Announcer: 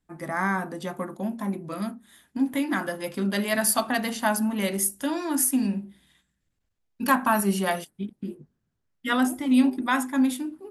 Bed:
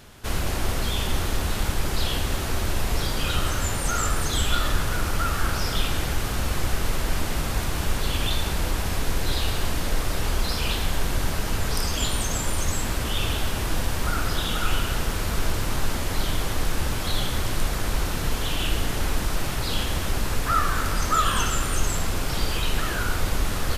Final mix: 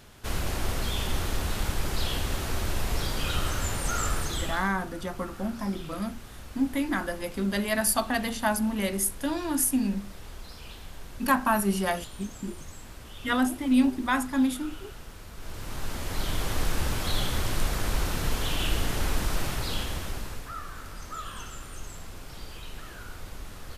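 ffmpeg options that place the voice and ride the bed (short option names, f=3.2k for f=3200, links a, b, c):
-filter_complex "[0:a]adelay=4200,volume=-2dB[a];[1:a]volume=12dB,afade=t=out:st=4.14:d=0.59:silence=0.188365,afade=t=in:st=15.37:d=1.21:silence=0.158489,afade=t=out:st=19.39:d=1.13:silence=0.199526[b];[a][b]amix=inputs=2:normalize=0"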